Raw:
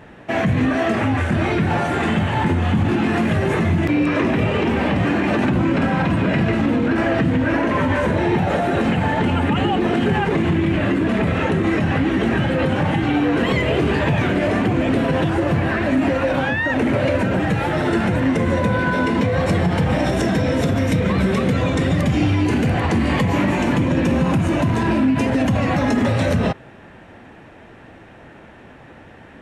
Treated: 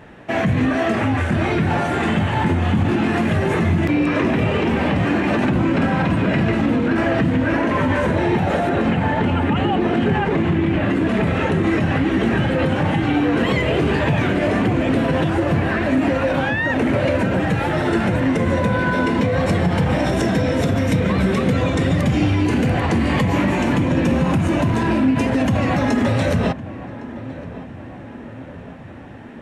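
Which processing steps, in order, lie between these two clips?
0:08.69–0:10.90: high-shelf EQ 5,700 Hz −10 dB
feedback echo with a low-pass in the loop 1,109 ms, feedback 65%, low-pass 1,600 Hz, level −15.5 dB

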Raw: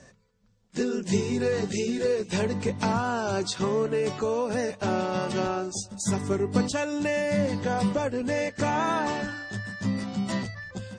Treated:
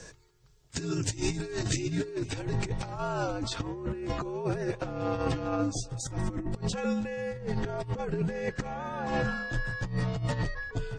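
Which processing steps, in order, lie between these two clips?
frequency shifter −79 Hz
compressor whose output falls as the input rises −30 dBFS, ratio −0.5
high-shelf EQ 3,800 Hz +7 dB, from 0:01.76 −3.5 dB, from 0:03.27 −11.5 dB

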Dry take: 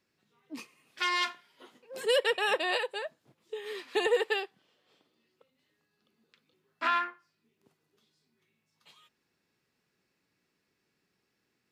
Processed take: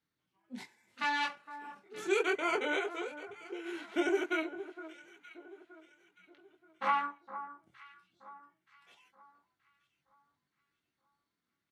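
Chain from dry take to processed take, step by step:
multi-voice chorus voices 2, 0.29 Hz, delay 20 ms, depth 3.6 ms
dynamic equaliser 4,000 Hz, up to −3 dB, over −54 dBFS, Q 3.5
pitch shifter −3.5 semitones
noise reduction from a noise print of the clip's start 6 dB
on a send: delay that swaps between a low-pass and a high-pass 463 ms, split 1,500 Hz, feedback 58%, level −12 dB

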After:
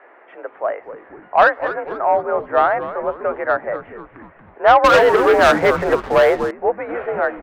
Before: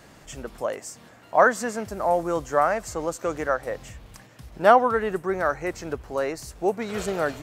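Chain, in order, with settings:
single-sideband voice off tune +52 Hz 350–2,100 Hz
soft clipping −9.5 dBFS, distortion −17 dB
echo with shifted repeats 243 ms, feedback 48%, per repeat −130 Hz, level −13 dB
0:04.84–0:06.51: leveller curve on the samples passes 3
level +6.5 dB

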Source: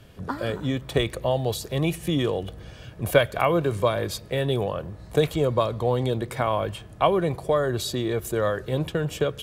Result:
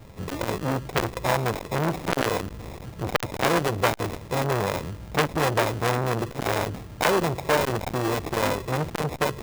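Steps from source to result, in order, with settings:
0:01.97–0:02.79: parametric band 3,800 Hz +13.5 dB 1.1 octaves
sample-rate reduction 1,500 Hz, jitter 0%
saturating transformer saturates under 2,100 Hz
level +5 dB

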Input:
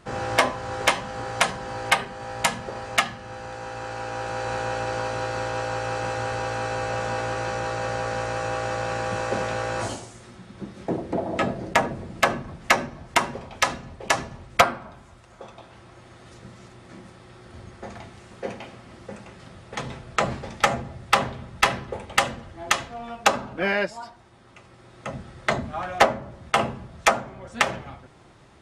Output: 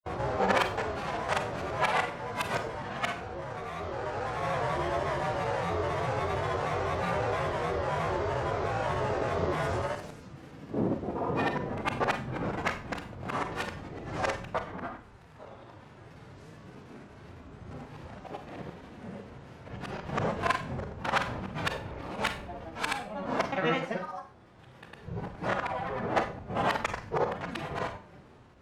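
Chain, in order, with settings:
reversed piece by piece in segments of 183 ms
high-shelf EQ 3,200 Hz −9.5 dB
granular cloud 100 ms, grains 30 per second, pitch spread up and down by 7 semitones
harmonic and percussive parts rebalanced harmonic +9 dB
on a send: convolution reverb RT60 0.40 s, pre-delay 31 ms, DRR 7 dB
on the sum: level −6 dB

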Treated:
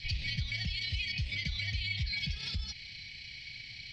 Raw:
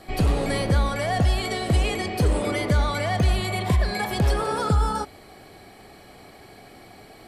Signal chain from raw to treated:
drawn EQ curve 130 Hz 0 dB, 350 Hz −27 dB, 1,300 Hz −27 dB, 2,200 Hz +10 dB, 5,300 Hz +11 dB, 9,600 Hz −28 dB
downward compressor 4 to 1, threshold −33 dBFS, peak gain reduction 15 dB
time stretch by overlap-add 0.54×, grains 65 ms

